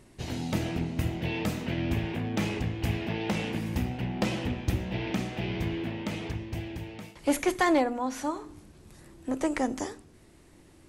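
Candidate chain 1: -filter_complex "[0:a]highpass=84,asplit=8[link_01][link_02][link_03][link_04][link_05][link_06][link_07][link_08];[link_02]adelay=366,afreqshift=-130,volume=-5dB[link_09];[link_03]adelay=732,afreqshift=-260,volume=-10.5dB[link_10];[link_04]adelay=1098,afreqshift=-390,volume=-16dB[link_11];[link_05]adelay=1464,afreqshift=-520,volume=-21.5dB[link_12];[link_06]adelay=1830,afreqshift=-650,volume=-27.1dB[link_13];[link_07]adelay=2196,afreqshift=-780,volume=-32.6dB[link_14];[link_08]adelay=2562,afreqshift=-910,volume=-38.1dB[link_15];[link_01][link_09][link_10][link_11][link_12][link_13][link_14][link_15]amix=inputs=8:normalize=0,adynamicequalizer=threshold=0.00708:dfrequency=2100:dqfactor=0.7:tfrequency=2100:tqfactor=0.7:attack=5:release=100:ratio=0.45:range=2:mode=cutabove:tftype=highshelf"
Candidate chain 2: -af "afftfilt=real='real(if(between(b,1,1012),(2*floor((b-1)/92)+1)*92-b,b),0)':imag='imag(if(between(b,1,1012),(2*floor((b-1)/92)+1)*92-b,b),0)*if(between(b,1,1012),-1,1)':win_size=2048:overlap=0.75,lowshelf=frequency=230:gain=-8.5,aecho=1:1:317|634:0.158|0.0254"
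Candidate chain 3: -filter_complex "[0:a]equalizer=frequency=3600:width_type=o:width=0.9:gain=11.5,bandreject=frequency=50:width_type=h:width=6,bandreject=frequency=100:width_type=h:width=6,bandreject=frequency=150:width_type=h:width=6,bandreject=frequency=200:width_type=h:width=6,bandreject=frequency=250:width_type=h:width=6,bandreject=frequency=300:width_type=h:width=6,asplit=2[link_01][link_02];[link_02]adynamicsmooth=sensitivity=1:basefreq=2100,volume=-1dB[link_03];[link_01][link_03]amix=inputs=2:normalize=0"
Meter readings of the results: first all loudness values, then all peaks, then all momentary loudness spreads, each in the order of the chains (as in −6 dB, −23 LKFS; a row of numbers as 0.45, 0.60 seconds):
−30.5, −28.5, −25.5 LKFS; −13.0, −13.0, −6.5 dBFS; 10, 10, 10 LU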